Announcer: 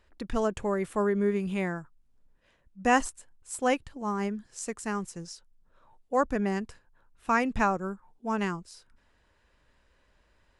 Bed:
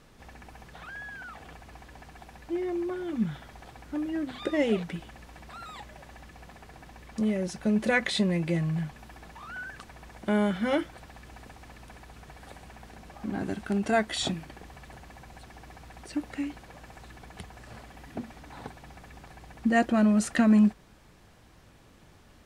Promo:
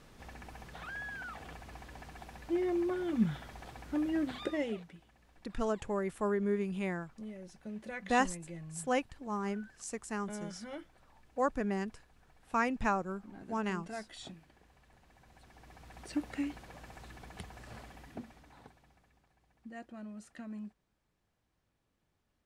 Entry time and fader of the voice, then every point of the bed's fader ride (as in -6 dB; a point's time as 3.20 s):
5.25 s, -5.5 dB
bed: 4.32 s -1 dB
4.94 s -18 dB
14.92 s -18 dB
16.08 s -3 dB
17.85 s -3 dB
19.30 s -24 dB